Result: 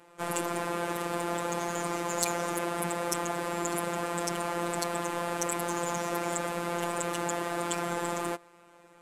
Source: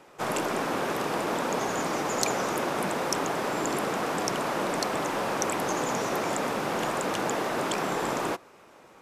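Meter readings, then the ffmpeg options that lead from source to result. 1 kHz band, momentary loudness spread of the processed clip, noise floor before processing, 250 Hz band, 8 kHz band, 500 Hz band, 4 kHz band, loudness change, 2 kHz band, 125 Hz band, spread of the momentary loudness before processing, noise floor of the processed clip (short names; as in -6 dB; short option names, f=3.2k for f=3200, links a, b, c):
-3.5 dB, 2 LU, -54 dBFS, -3.0 dB, -0.5 dB, -3.5 dB, -5.0 dB, -3.0 dB, -4.0 dB, -0.5 dB, 1 LU, -57 dBFS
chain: -af "aexciter=amount=5:drive=4.9:freq=7.7k,adynamicsmooth=sensitivity=2.5:basefreq=6.8k,afftfilt=real='hypot(re,im)*cos(PI*b)':imag='0':win_size=1024:overlap=0.75"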